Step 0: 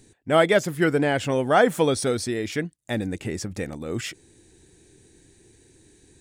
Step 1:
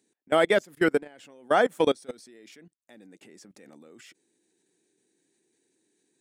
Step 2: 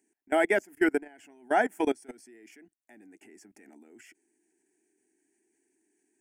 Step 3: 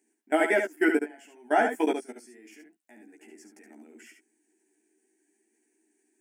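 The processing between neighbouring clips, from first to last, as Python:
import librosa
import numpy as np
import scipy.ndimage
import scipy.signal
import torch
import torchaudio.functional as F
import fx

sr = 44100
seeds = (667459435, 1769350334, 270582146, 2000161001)

y1 = scipy.signal.sosfilt(scipy.signal.butter(4, 200.0, 'highpass', fs=sr, output='sos'), x)
y1 = fx.level_steps(y1, sr, step_db=21)
y1 = fx.upward_expand(y1, sr, threshold_db=-44.0, expansion=1.5)
y1 = y1 * librosa.db_to_amplitude(2.0)
y2 = fx.fixed_phaser(y1, sr, hz=780.0, stages=8)
y3 = fx.brickwall_highpass(y2, sr, low_hz=190.0)
y3 = fx.doubler(y3, sr, ms=13.0, db=-4.0)
y3 = y3 + 10.0 ** (-6.5 / 20.0) * np.pad(y3, (int(71 * sr / 1000.0), 0))[:len(y3)]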